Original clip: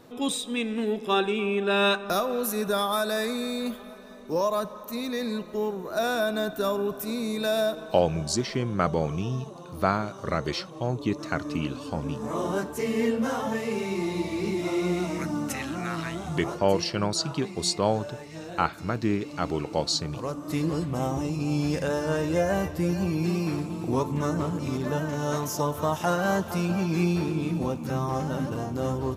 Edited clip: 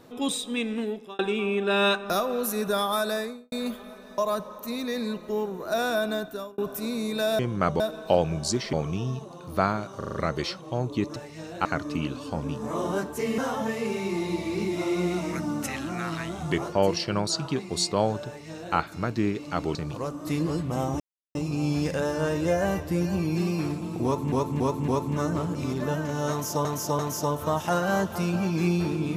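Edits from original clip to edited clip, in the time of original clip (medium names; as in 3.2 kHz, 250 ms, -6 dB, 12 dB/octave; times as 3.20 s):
0.74–1.19 s: fade out linear
3.08–3.52 s: studio fade out
4.18–4.43 s: delete
6.34–6.83 s: fade out
8.57–8.98 s: move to 7.64 s
10.23 s: stutter 0.04 s, 5 plays
12.98–13.24 s: delete
18.13–18.62 s: copy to 11.25 s
19.61–19.98 s: delete
21.23 s: insert silence 0.35 s
23.92–24.20 s: loop, 4 plays
25.35–25.69 s: loop, 3 plays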